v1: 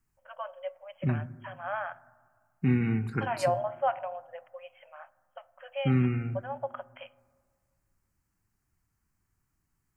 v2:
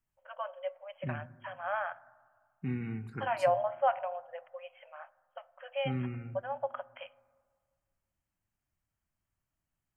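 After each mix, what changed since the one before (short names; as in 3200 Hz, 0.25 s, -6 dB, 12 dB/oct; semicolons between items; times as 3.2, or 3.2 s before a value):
second voice -10.0 dB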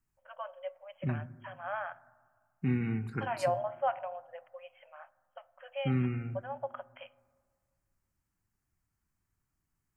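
first voice -3.0 dB; second voice +5.0 dB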